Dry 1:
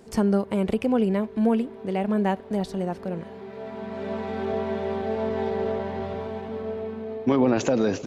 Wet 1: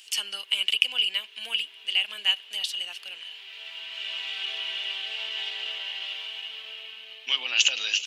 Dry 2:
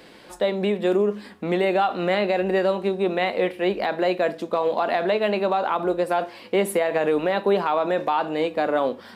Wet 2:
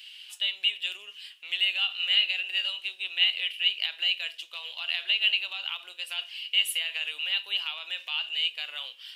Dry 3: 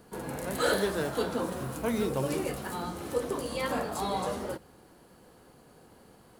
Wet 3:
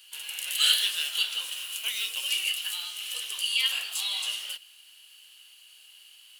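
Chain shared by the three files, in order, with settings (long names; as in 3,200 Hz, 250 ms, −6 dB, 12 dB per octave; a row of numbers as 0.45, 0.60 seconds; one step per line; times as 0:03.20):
high-pass with resonance 2,900 Hz, resonance Q 12
high-shelf EQ 5,100 Hz +8 dB
loudness normalisation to −27 LKFS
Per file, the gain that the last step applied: +3.5, −7.0, +2.0 decibels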